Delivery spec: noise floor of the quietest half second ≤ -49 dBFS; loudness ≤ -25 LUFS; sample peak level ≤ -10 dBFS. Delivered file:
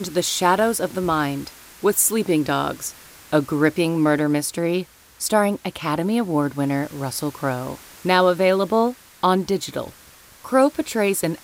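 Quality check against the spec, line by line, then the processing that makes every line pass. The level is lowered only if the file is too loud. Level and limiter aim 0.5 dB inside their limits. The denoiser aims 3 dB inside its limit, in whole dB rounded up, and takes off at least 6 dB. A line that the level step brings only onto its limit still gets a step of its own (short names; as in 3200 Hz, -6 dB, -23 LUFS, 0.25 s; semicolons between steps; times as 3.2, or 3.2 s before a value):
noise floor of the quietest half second -48 dBFS: fail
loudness -21.0 LUFS: fail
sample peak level -3.5 dBFS: fail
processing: gain -4.5 dB; limiter -10.5 dBFS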